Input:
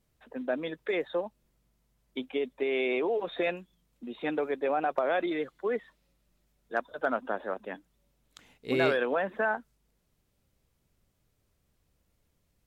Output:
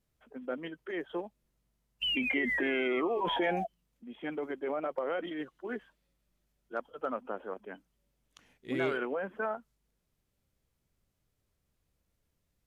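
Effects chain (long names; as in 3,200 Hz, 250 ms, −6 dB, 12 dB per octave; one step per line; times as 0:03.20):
sound drawn into the spectrogram fall, 0:02.02–0:03.66, 730–3,100 Hz −25 dBFS
formants moved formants −2 semitones
level −5.5 dB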